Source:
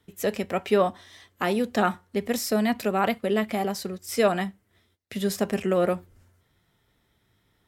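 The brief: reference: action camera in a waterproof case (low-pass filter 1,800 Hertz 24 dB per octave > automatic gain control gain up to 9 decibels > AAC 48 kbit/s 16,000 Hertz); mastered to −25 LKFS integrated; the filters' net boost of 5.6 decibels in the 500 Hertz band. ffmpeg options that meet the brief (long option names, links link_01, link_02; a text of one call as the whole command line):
ffmpeg -i in.wav -af "lowpass=frequency=1800:width=0.5412,lowpass=frequency=1800:width=1.3066,equalizer=frequency=500:width_type=o:gain=7,dynaudnorm=maxgain=9dB,volume=-2.5dB" -ar 16000 -c:a aac -b:a 48k out.aac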